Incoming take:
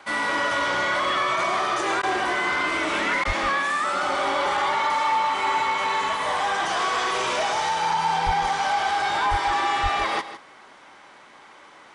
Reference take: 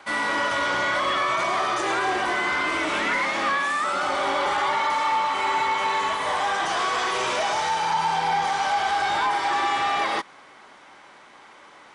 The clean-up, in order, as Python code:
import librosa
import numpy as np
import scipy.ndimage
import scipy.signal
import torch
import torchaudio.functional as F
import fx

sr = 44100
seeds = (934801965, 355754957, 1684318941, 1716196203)

y = fx.fix_deplosive(x, sr, at_s=(3.26, 8.25, 9.3, 9.82))
y = fx.fix_interpolate(y, sr, at_s=(2.02, 3.24), length_ms=10.0)
y = fx.fix_echo_inverse(y, sr, delay_ms=157, level_db=-12.5)